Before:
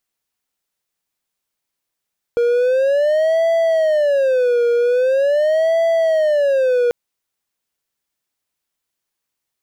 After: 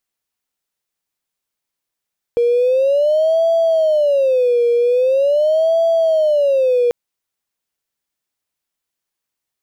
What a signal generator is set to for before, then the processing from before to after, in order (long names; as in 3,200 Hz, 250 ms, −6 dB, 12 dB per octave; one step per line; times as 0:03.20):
siren wail 474–663 Hz 0.43 per second triangle −10.5 dBFS 4.54 s
leveller curve on the samples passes 1